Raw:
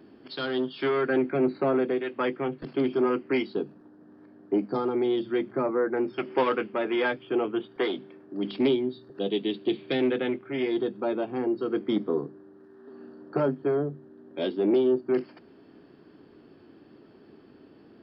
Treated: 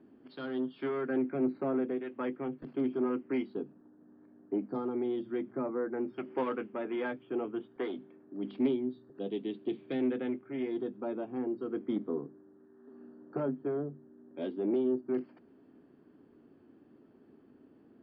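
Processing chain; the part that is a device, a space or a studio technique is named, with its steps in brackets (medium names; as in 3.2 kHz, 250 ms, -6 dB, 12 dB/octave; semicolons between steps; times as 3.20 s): phone in a pocket (low-pass 3.7 kHz 12 dB/octave; peaking EQ 250 Hz +6 dB 0.33 oct; treble shelf 2.4 kHz -9 dB); trim -8.5 dB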